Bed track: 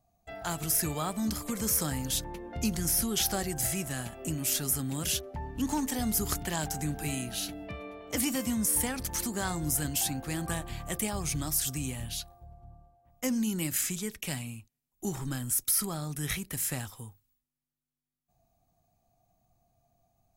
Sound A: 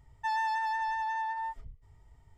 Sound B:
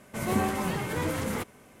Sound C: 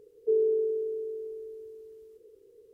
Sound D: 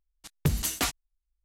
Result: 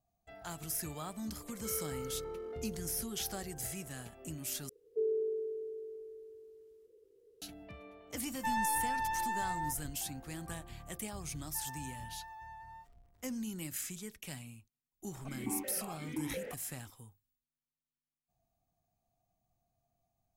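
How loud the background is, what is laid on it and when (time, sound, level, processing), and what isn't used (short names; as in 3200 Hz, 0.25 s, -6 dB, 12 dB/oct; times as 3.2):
bed track -10 dB
1.37 add C -6.5 dB + overloaded stage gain 35 dB
4.69 replace with C -8 dB
8.2 add A -1.5 dB + half-wave gain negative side -3 dB
11.31 add A -17.5 dB + zero-crossing step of -48.5 dBFS
15.11 add B -1.5 dB + vowel sequencer 5.7 Hz
not used: D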